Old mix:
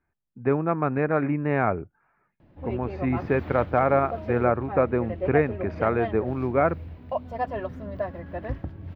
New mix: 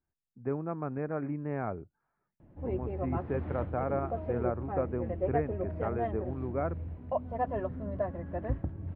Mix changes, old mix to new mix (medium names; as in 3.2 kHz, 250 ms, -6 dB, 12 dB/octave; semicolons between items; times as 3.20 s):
speech -8.5 dB; master: add tape spacing loss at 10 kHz 45 dB